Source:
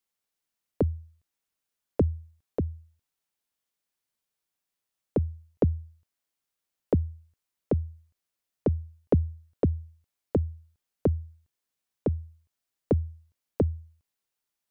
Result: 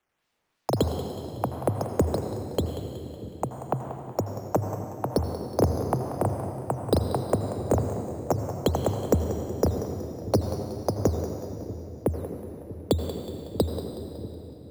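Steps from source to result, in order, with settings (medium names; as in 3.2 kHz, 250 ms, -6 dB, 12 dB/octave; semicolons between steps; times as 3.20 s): tone controls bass -4 dB, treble -2 dB; decimation with a swept rate 8×, swing 100% 2.8 Hz; ever faster or slower copies 91 ms, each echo +4 st, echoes 2; in parallel at +1 dB: compression, threshold -36 dBFS, peak gain reduction 16.5 dB; on the sum: reverberation RT60 3.6 s, pre-delay 75 ms, DRR 5.5 dB; dynamic bell 1.2 kHz, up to +5 dB, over -44 dBFS, Q 1.2; on a send: two-band feedback delay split 370 Hz, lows 634 ms, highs 185 ms, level -12.5 dB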